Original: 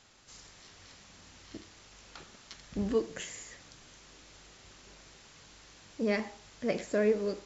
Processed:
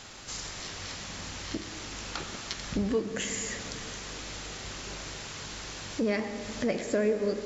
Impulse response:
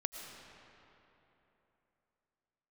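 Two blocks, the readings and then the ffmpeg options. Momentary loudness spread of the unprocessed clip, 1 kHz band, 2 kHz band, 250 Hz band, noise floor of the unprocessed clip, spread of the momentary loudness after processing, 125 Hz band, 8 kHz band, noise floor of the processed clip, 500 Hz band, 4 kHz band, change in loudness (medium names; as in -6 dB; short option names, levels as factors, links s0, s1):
23 LU, +6.5 dB, +5.5 dB, +3.5 dB, -57 dBFS, 10 LU, +5.5 dB, no reading, -41 dBFS, +1.5 dB, +11.0 dB, -1.0 dB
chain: -filter_complex "[0:a]acompressor=threshold=0.00447:ratio=2.5,asplit=2[s0][s1];[1:a]atrim=start_sample=2205,asetrate=42777,aresample=44100[s2];[s1][s2]afir=irnorm=-1:irlink=0,volume=1.19[s3];[s0][s3]amix=inputs=2:normalize=0,volume=2.66"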